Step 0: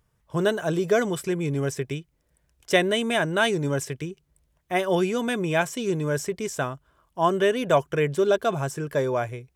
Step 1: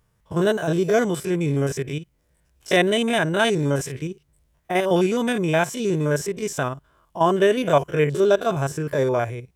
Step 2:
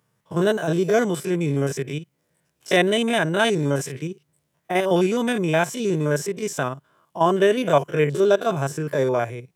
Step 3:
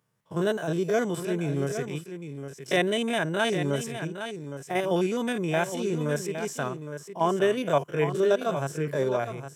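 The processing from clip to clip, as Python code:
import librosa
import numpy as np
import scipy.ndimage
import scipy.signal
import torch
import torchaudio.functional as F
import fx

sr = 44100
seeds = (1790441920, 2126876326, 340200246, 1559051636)

y1 = fx.spec_steps(x, sr, hold_ms=50)
y1 = y1 * librosa.db_to_amplitude(4.5)
y2 = scipy.signal.sosfilt(scipy.signal.butter(4, 120.0, 'highpass', fs=sr, output='sos'), y1)
y3 = y2 + 10.0 ** (-9.5 / 20.0) * np.pad(y2, (int(812 * sr / 1000.0), 0))[:len(y2)]
y3 = y3 * librosa.db_to_amplitude(-6.0)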